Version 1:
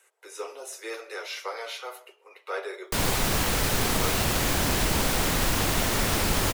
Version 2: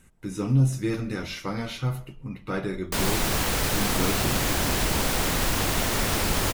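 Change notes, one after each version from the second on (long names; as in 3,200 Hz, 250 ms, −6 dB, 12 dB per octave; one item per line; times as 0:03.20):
speech: remove Butterworth high-pass 400 Hz 72 dB per octave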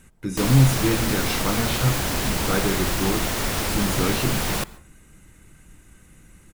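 speech +5.0 dB
background: entry −2.55 s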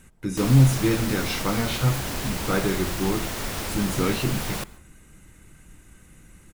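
background −5.5 dB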